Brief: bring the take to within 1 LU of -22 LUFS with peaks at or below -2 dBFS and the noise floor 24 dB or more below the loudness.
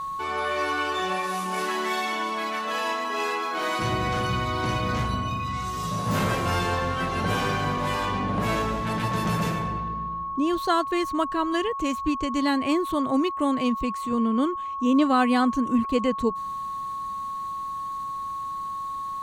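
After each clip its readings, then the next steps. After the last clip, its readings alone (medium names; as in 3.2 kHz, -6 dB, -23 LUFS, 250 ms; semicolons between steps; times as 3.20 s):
steady tone 1.1 kHz; tone level -29 dBFS; loudness -26.0 LUFS; peak level -10.0 dBFS; loudness target -22.0 LUFS
-> band-stop 1.1 kHz, Q 30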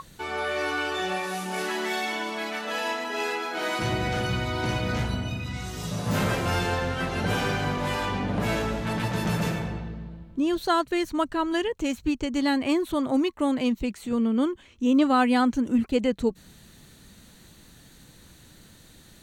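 steady tone not found; loudness -26.5 LUFS; peak level -11.0 dBFS; loudness target -22.0 LUFS
-> trim +4.5 dB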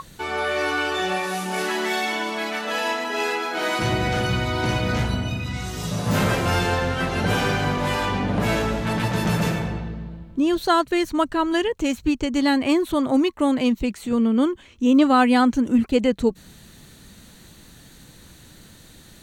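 loudness -22.0 LUFS; peak level -6.5 dBFS; noise floor -48 dBFS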